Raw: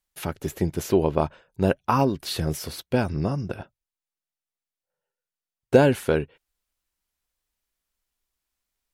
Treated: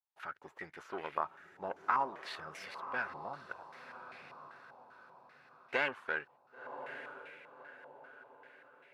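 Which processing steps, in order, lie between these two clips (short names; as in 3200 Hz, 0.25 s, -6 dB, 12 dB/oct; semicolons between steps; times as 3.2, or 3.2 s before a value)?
half-wave gain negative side -7 dB; differentiator; on a send: diffused feedback echo 1.064 s, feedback 42%, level -10 dB; on the sum: stepped low-pass 5.1 Hz 880–2100 Hz; gain +4 dB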